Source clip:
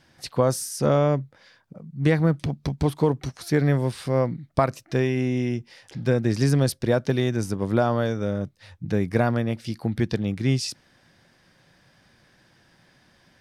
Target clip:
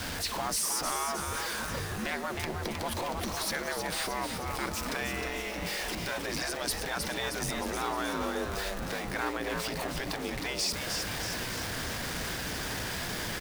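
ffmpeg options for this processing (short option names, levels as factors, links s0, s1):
-filter_complex "[0:a]aeval=exprs='val(0)+0.5*0.0316*sgn(val(0))':c=same,afftfilt=real='re*lt(hypot(re,im),0.251)':imag='im*lt(hypot(re,im),0.251)':win_size=1024:overlap=0.75,afreqshift=-59,asplit=8[s0][s1][s2][s3][s4][s5][s6][s7];[s1]adelay=312,afreqshift=140,volume=0.501[s8];[s2]adelay=624,afreqshift=280,volume=0.275[s9];[s3]adelay=936,afreqshift=420,volume=0.151[s10];[s4]adelay=1248,afreqshift=560,volume=0.0832[s11];[s5]adelay=1560,afreqshift=700,volume=0.0457[s12];[s6]adelay=1872,afreqshift=840,volume=0.0251[s13];[s7]adelay=2184,afreqshift=980,volume=0.0138[s14];[s0][s8][s9][s10][s11][s12][s13][s14]amix=inputs=8:normalize=0,asplit=2[s15][s16];[s16]alimiter=limit=0.0668:level=0:latency=1:release=260,volume=1[s17];[s15][s17]amix=inputs=2:normalize=0,volume=0.473"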